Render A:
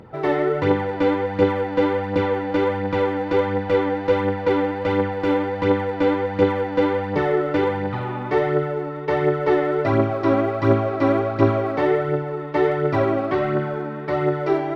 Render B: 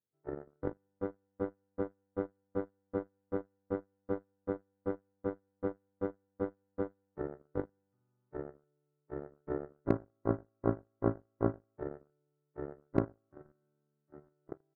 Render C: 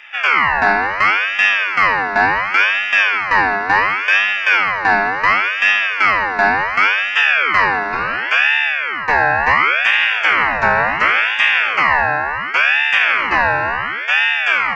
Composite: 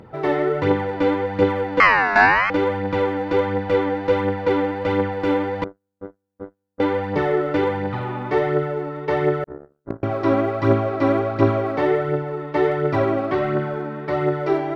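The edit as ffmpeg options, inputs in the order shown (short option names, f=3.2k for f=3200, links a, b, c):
-filter_complex "[1:a]asplit=2[a][b];[0:a]asplit=4[c][d][e][f];[c]atrim=end=1.802[g];[2:a]atrim=start=1.798:end=2.502[h];[d]atrim=start=2.498:end=5.642[i];[a]atrim=start=5.638:end=6.802[j];[e]atrim=start=6.798:end=9.442[k];[b]atrim=start=9.438:end=10.032[l];[f]atrim=start=10.028[m];[g][h]acrossfade=d=0.004:c1=hsin:c2=hsin[n];[n][i]acrossfade=d=0.004:c1=hsin:c2=hsin[o];[o][j]acrossfade=d=0.004:c1=hsin:c2=hsin[p];[p][k]acrossfade=d=0.004:c1=hsin:c2=hsin[q];[q][l]acrossfade=d=0.004:c1=hsin:c2=hsin[r];[r][m]acrossfade=d=0.004:c1=hsin:c2=hsin"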